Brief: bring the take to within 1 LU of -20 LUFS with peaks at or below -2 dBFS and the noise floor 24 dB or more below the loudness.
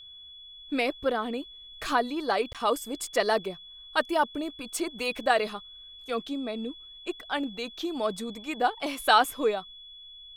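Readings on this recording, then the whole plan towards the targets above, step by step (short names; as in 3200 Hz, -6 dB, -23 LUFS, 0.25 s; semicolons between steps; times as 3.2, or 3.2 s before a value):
dropouts 1; longest dropout 17 ms; steady tone 3400 Hz; tone level -45 dBFS; loudness -29.0 LUFS; peak -7.5 dBFS; loudness target -20.0 LUFS
-> interpolate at 2.53, 17 ms; notch 3400 Hz, Q 30; gain +9 dB; limiter -2 dBFS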